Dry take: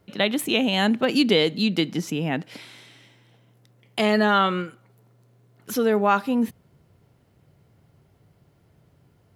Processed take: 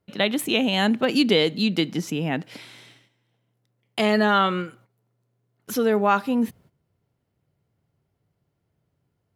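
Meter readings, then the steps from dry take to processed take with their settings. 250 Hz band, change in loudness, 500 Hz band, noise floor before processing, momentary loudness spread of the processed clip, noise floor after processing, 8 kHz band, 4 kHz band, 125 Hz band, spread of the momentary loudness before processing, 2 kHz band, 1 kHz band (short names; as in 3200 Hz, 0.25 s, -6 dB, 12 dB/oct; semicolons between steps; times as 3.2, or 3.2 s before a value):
0.0 dB, 0.0 dB, 0.0 dB, -61 dBFS, 12 LU, -75 dBFS, 0.0 dB, 0.0 dB, 0.0 dB, 12 LU, 0.0 dB, 0.0 dB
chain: gate -50 dBFS, range -14 dB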